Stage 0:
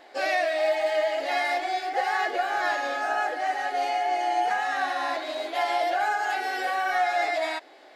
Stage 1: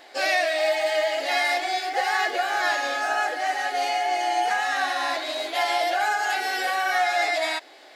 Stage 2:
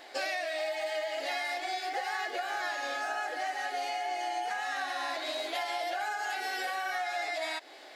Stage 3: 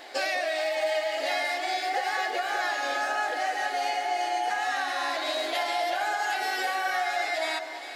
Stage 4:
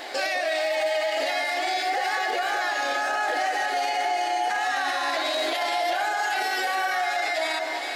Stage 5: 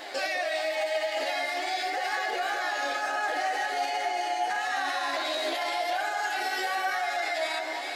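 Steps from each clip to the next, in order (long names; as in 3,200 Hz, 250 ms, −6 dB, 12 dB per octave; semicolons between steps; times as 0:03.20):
high-shelf EQ 2,200 Hz +9.5 dB
downward compressor 6 to 1, threshold −30 dBFS, peak gain reduction 11 dB; level −1.5 dB
delay that swaps between a low-pass and a high-pass 201 ms, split 1,200 Hz, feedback 64%, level −7 dB; level +5 dB
brickwall limiter −26 dBFS, peak gain reduction 9.5 dB; level +8.5 dB
flanger 1 Hz, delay 9 ms, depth 5.9 ms, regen +38%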